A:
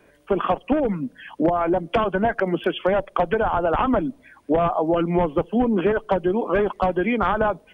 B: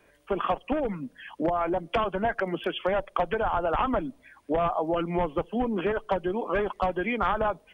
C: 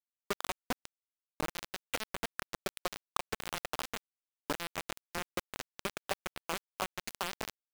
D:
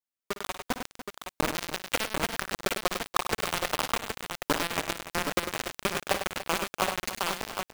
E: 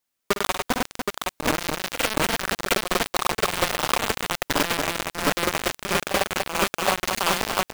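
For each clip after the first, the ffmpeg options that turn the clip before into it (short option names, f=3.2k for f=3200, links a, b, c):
-af "equalizer=f=230:w=0.41:g=-6,bandreject=f=1.5k:w=29,volume=-2.5dB"
-af "acompressor=threshold=-34dB:ratio=10,acrusher=bits=4:mix=0:aa=0.000001,volume=1dB"
-filter_complex "[0:a]dynaudnorm=f=200:g=7:m=8dB,asplit=2[a][b];[b]aecho=0:1:57|100|290|771:0.237|0.376|0.224|0.501[c];[a][c]amix=inputs=2:normalize=0"
-af "aeval=exprs='0.299*sin(PI/2*2.82*val(0)/0.299)':c=same"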